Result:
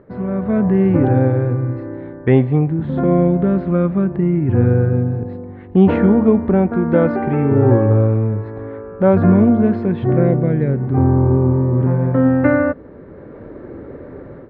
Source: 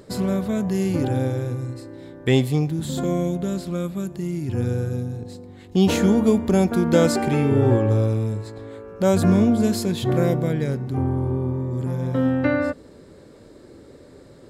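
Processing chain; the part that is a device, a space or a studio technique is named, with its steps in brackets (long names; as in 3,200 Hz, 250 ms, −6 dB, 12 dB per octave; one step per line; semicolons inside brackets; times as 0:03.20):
0:10.02–0:10.83: dynamic equaliser 1,100 Hz, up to −6 dB, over −37 dBFS, Q 0.94
action camera in a waterproof case (low-pass filter 1,900 Hz 24 dB per octave; automatic gain control gain up to 13.5 dB; level −1 dB; AAC 96 kbit/s 48,000 Hz)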